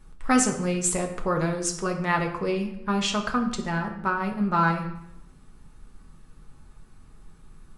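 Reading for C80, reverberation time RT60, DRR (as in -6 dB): 11.5 dB, 0.80 s, 1.5 dB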